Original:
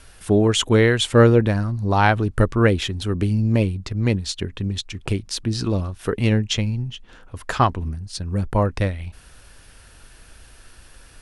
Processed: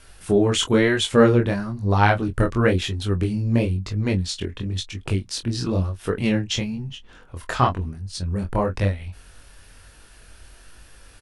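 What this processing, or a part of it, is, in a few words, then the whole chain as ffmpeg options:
double-tracked vocal: -filter_complex "[0:a]asplit=2[link_01][link_02];[link_02]adelay=22,volume=-12dB[link_03];[link_01][link_03]amix=inputs=2:normalize=0,flanger=delay=19.5:depth=5.9:speed=1,volume=1.5dB"

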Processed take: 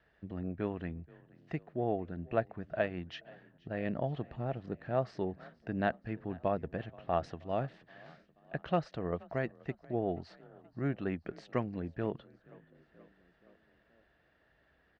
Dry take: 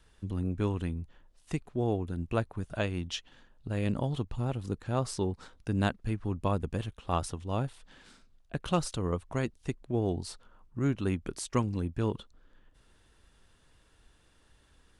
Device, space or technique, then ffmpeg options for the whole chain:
frequency-shifting delay pedal into a guitar cabinet: -filter_complex "[0:a]lowpass=frequency=2500:poles=1,asplit=5[link_01][link_02][link_03][link_04][link_05];[link_02]adelay=478,afreqshift=30,volume=-24dB[link_06];[link_03]adelay=956,afreqshift=60,volume=-28.4dB[link_07];[link_04]adelay=1434,afreqshift=90,volume=-32.9dB[link_08];[link_05]adelay=1912,afreqshift=120,volume=-37.3dB[link_09];[link_01][link_06][link_07][link_08][link_09]amix=inputs=5:normalize=0,highpass=86,equalizer=frequency=100:width_type=q:width=4:gain=-8,equalizer=frequency=250:width_type=q:width=4:gain=-3,equalizer=frequency=660:width_type=q:width=4:gain=10,equalizer=frequency=1000:width_type=q:width=4:gain=-5,equalizer=frequency=1800:width_type=q:width=4:gain=9,equalizer=frequency=3500:width_type=q:width=4:gain=-5,lowpass=frequency=4500:width=0.5412,lowpass=frequency=4500:width=1.3066,asettb=1/sr,asplit=3[link_10][link_11][link_12];[link_10]atrim=end=7.234[link_13];[link_11]atrim=start=7.23:end=8.55,asetpts=PTS-STARTPTS,afade=type=in:duration=0.004:curve=qsin,afade=type=out:start_time=1.316:duration=0.004:curve=qsin,highshelf=frequency=3900:gain=8.5[link_14];[link_12]atrim=start=8.546[link_15];[link_13][link_14]acrossfade=duration=0.004:curve1=hsin:curve2=qsin[link_16];[link_16][link_15]acrossfade=duration=0.004:curve1=qsin:curve2=hsin,volume=-3.5dB"

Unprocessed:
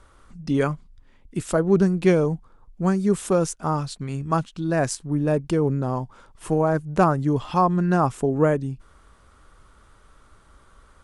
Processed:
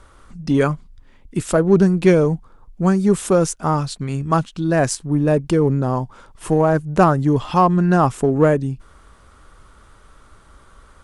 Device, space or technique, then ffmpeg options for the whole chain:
parallel distortion: -filter_complex "[0:a]asplit=2[link_01][link_02];[link_02]asoftclip=type=hard:threshold=-18.5dB,volume=-12dB[link_03];[link_01][link_03]amix=inputs=2:normalize=0,volume=3.5dB"

